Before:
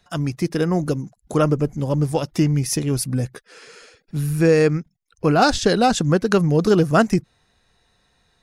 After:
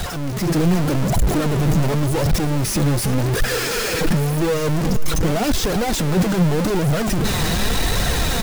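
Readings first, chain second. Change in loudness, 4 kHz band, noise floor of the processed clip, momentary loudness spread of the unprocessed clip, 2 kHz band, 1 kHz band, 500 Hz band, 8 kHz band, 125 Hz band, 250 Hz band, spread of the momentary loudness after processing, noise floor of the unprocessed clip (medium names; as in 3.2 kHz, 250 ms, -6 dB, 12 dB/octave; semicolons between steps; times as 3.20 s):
0.0 dB, +5.5 dB, -23 dBFS, 10 LU, +2.5 dB, -2.0 dB, -2.5 dB, +5.0 dB, +2.5 dB, +0.5 dB, 2 LU, -66 dBFS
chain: one-bit comparator; delay 365 ms -15.5 dB; flange 0.87 Hz, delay 1.2 ms, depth 5.3 ms, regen +40%; bass shelf 490 Hz +8.5 dB; level rider gain up to 7 dB; trim -6 dB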